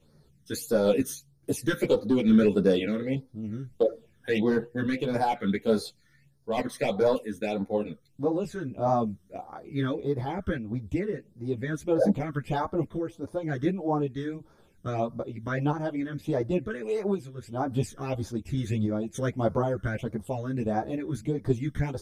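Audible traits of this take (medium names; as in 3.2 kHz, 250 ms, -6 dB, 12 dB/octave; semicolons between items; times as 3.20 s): phasing stages 12, 1.6 Hz, lowest notch 770–2800 Hz; random-step tremolo; a shimmering, thickened sound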